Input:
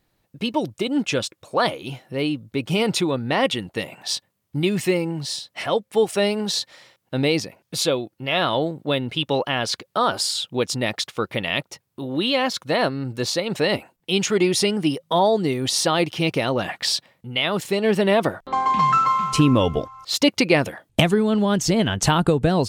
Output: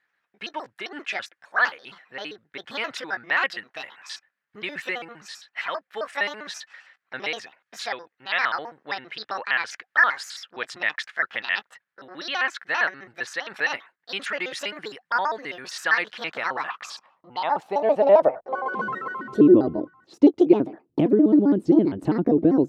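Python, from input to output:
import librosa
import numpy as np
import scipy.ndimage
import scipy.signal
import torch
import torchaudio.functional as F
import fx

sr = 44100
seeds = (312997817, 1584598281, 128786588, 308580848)

y = fx.pitch_trill(x, sr, semitones=6.0, every_ms=66)
y = fx.filter_sweep_bandpass(y, sr, from_hz=1700.0, to_hz=320.0, start_s=16.1, end_s=19.63, q=4.3)
y = y * librosa.db_to_amplitude(9.0)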